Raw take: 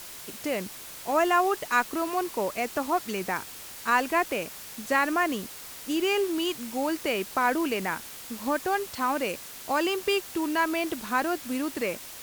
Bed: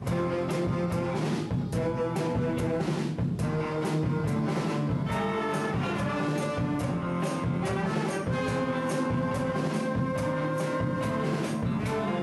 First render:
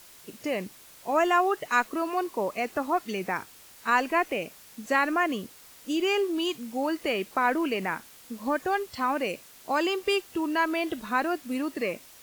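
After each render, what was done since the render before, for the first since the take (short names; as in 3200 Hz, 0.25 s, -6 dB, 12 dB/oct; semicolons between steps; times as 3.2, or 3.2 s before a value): noise print and reduce 9 dB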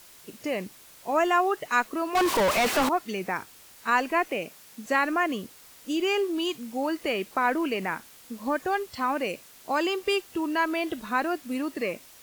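2.15–2.89 overdrive pedal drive 38 dB, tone 4300 Hz, clips at -16 dBFS; 4.28–4.86 HPF 100 Hz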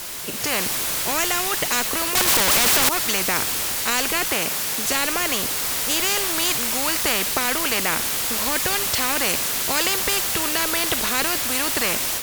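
AGC gain up to 9 dB; spectral compressor 4:1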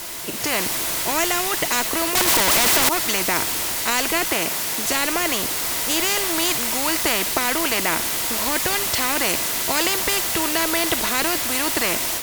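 small resonant body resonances 330/670/940/2000 Hz, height 6 dB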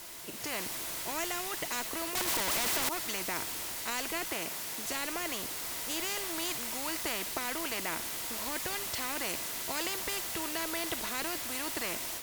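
gain -14 dB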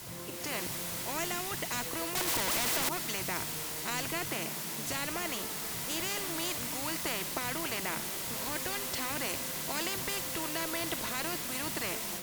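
add bed -18 dB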